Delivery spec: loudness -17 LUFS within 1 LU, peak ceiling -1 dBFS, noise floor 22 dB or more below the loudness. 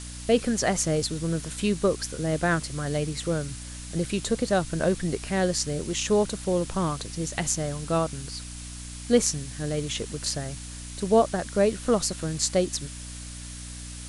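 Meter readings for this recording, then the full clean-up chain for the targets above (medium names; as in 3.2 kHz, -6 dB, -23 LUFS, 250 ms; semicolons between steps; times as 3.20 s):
hum 60 Hz; highest harmonic 300 Hz; hum level -37 dBFS; noise floor -39 dBFS; noise floor target -49 dBFS; loudness -26.5 LUFS; peak level -6.0 dBFS; loudness target -17.0 LUFS
-> de-hum 60 Hz, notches 5; noise print and reduce 10 dB; trim +9.5 dB; peak limiter -1 dBFS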